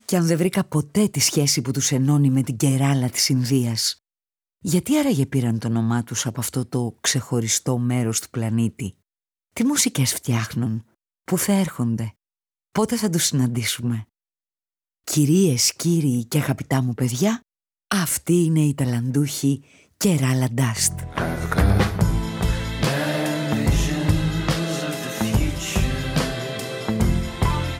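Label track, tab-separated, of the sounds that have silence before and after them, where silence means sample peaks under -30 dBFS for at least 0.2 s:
4.650000	8.900000	sound
9.570000	10.790000	sound
11.280000	12.090000	sound
12.750000	14.020000	sound
15.080000	17.370000	sound
17.910000	19.560000	sound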